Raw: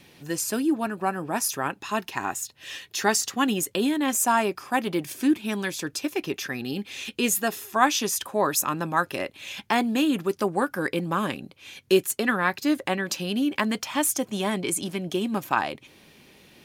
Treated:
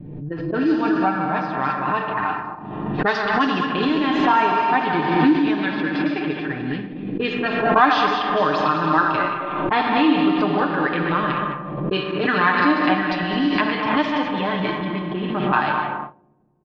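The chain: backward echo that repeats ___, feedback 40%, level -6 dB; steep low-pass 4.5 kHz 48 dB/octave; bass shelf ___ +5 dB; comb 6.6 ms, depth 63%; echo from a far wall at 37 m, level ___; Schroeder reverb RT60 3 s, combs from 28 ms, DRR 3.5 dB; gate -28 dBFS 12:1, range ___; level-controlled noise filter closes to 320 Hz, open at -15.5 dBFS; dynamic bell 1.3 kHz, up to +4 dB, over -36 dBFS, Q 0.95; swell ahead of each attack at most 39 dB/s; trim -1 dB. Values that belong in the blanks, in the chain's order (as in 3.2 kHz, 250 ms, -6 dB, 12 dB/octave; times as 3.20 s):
105 ms, 92 Hz, -7 dB, -16 dB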